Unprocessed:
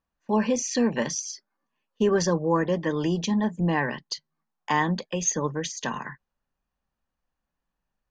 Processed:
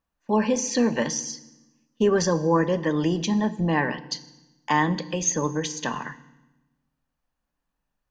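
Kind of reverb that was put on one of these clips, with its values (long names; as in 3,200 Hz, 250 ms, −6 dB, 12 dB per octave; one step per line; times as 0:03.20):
feedback delay network reverb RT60 1 s, low-frequency decay 1.4×, high-frequency decay 0.95×, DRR 12.5 dB
level +1.5 dB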